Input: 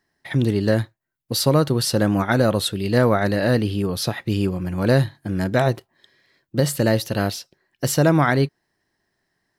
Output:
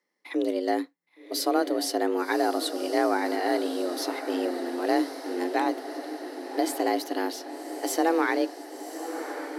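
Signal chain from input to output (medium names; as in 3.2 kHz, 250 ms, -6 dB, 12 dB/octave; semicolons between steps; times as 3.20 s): echo that smears into a reverb 1111 ms, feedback 62%, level -10 dB; frequency shift +170 Hz; trim -7.5 dB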